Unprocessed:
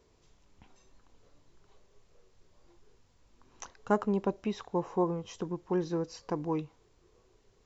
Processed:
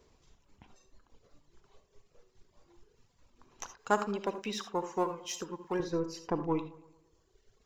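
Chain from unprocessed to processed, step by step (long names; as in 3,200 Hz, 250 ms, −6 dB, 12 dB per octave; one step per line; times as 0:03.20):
gain on one half-wave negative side −3 dB
reverb reduction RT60 1.5 s
0:03.77–0:05.80: spectral tilt +3.5 dB per octave
delay with a low-pass on its return 112 ms, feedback 48%, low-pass 2,300 Hz, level −17.5 dB
convolution reverb, pre-delay 3 ms, DRR 10 dB
level +3 dB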